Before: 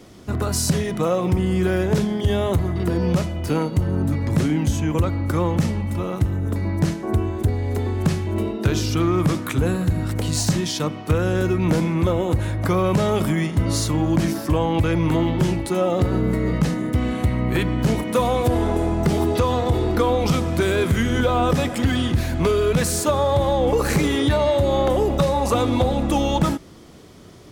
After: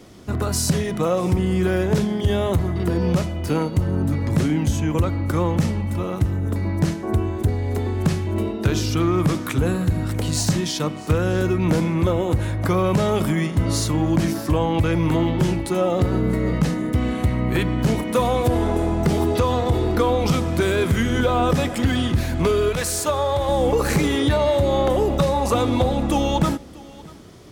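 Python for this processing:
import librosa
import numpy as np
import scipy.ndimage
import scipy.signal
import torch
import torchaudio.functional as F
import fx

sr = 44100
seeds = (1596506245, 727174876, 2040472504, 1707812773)

y = fx.peak_eq(x, sr, hz=180.0, db=-10.5, octaves=1.8, at=(22.69, 23.49))
y = y + 10.0 ** (-22.0 / 20.0) * np.pad(y, (int(637 * sr / 1000.0), 0))[:len(y)]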